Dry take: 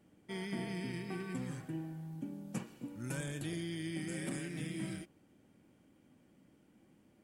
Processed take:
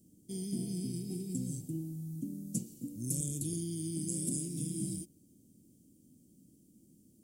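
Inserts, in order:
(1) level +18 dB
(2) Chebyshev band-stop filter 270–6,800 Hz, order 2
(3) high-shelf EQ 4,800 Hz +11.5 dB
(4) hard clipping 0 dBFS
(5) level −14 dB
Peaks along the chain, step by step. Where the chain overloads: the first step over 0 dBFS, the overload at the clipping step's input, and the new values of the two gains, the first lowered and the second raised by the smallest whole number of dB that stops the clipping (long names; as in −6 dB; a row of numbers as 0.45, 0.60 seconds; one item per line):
−8.5, −10.5, −4.5, −4.5, −18.5 dBFS
no step passes full scale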